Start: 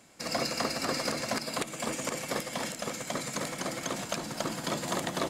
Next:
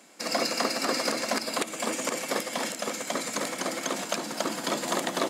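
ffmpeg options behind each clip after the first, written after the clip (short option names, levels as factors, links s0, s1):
-af "highpass=f=210:w=0.5412,highpass=f=210:w=1.3066,volume=1.58"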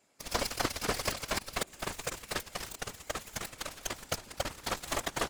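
-af "aeval=exprs='0.266*(cos(1*acos(clip(val(0)/0.266,-1,1)))-cos(1*PI/2))+0.0841*(cos(4*acos(clip(val(0)/0.266,-1,1)))-cos(4*PI/2))+0.0944*(cos(5*acos(clip(val(0)/0.266,-1,1)))-cos(5*PI/2))+0.119*(cos(7*acos(clip(val(0)/0.266,-1,1)))-cos(7*PI/2))':c=same,afftfilt=real='hypot(re,im)*cos(2*PI*random(0))':imag='hypot(re,im)*sin(2*PI*random(1))':win_size=512:overlap=0.75,volume=0.891"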